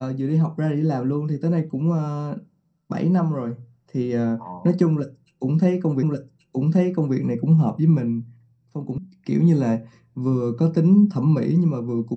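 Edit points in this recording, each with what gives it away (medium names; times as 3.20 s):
6.03 s: repeat of the last 1.13 s
8.98 s: sound stops dead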